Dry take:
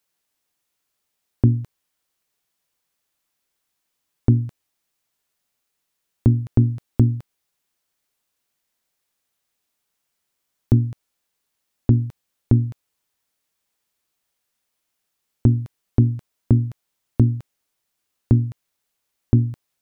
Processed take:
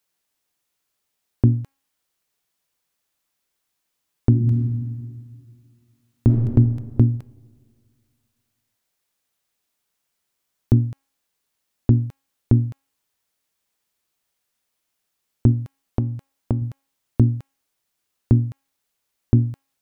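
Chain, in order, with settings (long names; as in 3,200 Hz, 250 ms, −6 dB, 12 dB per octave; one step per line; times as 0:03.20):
0:04.29–0:06.28: thrown reverb, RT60 2.1 s, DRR 1.5 dB
0:15.51–0:16.62: downward compressor, threshold −18 dBFS, peak gain reduction 8.5 dB
hum removal 273.2 Hz, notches 11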